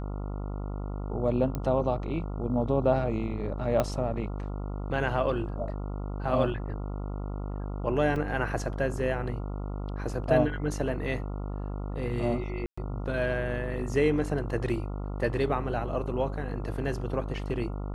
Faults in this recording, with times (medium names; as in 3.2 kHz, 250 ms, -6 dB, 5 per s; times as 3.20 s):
buzz 50 Hz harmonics 28 -34 dBFS
1.55 s: pop -19 dBFS
3.80 s: pop -12 dBFS
8.16 s: dropout 3 ms
12.66–12.78 s: dropout 115 ms